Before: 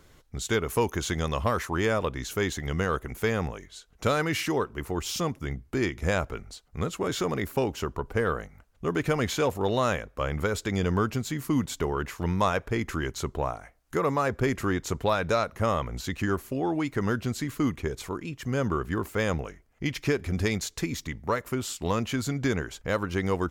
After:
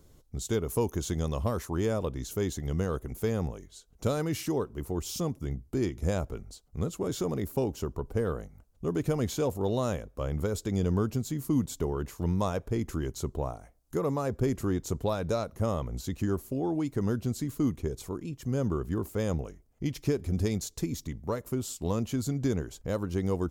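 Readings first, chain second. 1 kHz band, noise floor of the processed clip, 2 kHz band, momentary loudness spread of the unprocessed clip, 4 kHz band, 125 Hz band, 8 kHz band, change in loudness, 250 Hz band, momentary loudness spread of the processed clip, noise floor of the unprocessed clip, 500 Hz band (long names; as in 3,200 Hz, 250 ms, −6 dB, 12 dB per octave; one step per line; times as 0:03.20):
−8.5 dB, −60 dBFS, −13.5 dB, 8 LU, −8.0 dB, −0.5 dB, −3.0 dB, −3.0 dB, −1.0 dB, 7 LU, −58 dBFS, −3.0 dB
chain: parametric band 1,900 Hz −14.5 dB 2.2 octaves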